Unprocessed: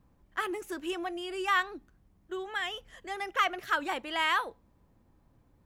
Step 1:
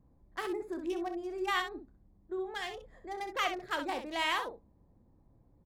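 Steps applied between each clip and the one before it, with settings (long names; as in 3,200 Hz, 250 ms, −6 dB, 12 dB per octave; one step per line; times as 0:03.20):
adaptive Wiener filter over 15 samples
parametric band 1,400 Hz −9 dB 0.85 octaves
on a send: ambience of single reflections 30 ms −13 dB, 64 ms −8.5 dB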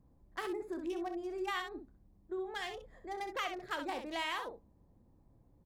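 downward compressor 2.5 to 1, threshold −34 dBFS, peak gain reduction 6 dB
level −1 dB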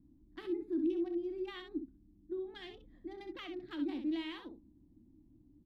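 drawn EQ curve 170 Hz 0 dB, 310 Hz +14 dB, 460 Hz −14 dB, 1,200 Hz −13 dB, 2,000 Hz −9 dB, 3,800 Hz −3 dB, 6,900 Hz −21 dB, 14,000 Hz −18 dB
level −1.5 dB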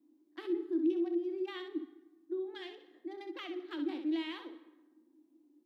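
Chebyshev high-pass filter 310 Hz, order 4
on a send at −15.5 dB: convolution reverb RT60 1.1 s, pre-delay 112 ms
on the sum: level +3 dB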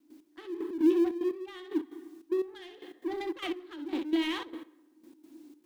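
mu-law and A-law mismatch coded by mu
gate pattern ".x....x.xxx" 149 BPM −12 dB
level +6 dB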